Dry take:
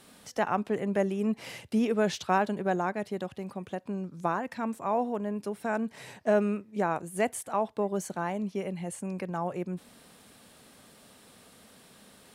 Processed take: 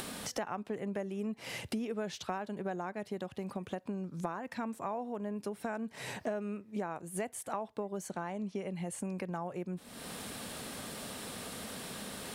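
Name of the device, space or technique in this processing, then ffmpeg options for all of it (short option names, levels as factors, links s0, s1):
upward and downward compression: -filter_complex "[0:a]acompressor=mode=upward:threshold=0.0112:ratio=2.5,acompressor=threshold=0.01:ratio=6,asettb=1/sr,asplit=3[s0][s1][s2];[s0]atrim=end=8.104[s3];[s1]atrim=start=8.1:end=8.71,asetpts=PTS-STARTPTS,afade=t=in:d=0.004:c=qsin,afade=t=out:st=0.606:d=0.004:c=qsin,lowpass=f=10000:w=0.5412,lowpass=f=10000:w=1.3066[s4];[s2]atrim=start=8.706[s5];[s3][s4]acrossfade=d=0.004:c1=hsin:c2=qsin[s6];[s6][s5]acrossfade=d=0.004:c1=qsin:c2=hsin,volume=1.78"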